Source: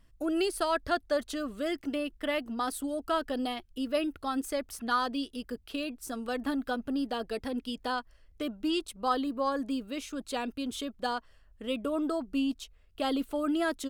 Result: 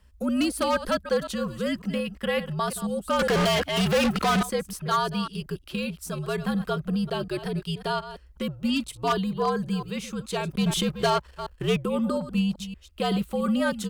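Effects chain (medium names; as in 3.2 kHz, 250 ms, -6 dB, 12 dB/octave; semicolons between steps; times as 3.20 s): chunks repeated in reverse 182 ms, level -12.5 dB; 10.51–11.77 s: waveshaping leveller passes 2; wavefolder -20.5 dBFS; 3.19–4.43 s: overdrive pedal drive 31 dB, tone 5.9 kHz, clips at -20.5 dBFS; frequency shift -77 Hz; trim +4.5 dB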